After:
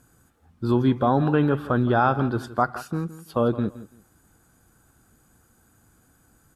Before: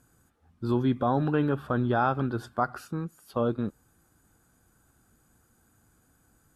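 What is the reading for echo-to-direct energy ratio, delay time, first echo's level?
-15.5 dB, 167 ms, -15.5 dB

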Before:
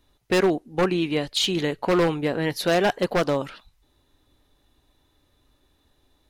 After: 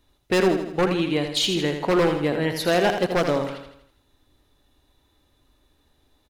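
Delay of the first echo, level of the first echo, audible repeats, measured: 81 ms, -7.5 dB, 5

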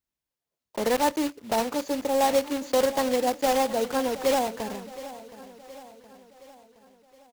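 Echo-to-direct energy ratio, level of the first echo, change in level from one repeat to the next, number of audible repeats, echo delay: -14.5 dB, -16.0 dB, -5.5 dB, 4, 719 ms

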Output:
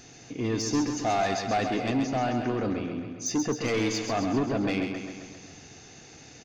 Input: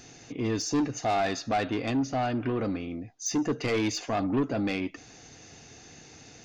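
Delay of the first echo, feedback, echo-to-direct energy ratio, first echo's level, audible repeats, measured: 133 ms, 60%, -4.5 dB, -6.5 dB, 7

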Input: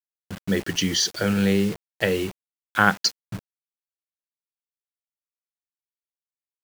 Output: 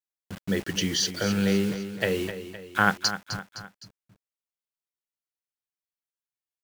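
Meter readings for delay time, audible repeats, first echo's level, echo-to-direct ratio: 257 ms, 3, -11.0 dB, -10.0 dB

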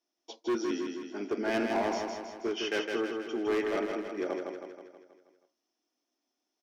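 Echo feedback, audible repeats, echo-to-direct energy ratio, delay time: 55%, 6, -3.0 dB, 160 ms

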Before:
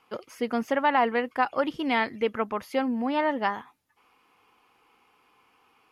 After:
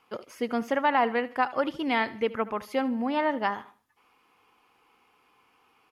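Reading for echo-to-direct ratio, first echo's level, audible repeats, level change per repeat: -17.5 dB, -18.0 dB, 2, -8.5 dB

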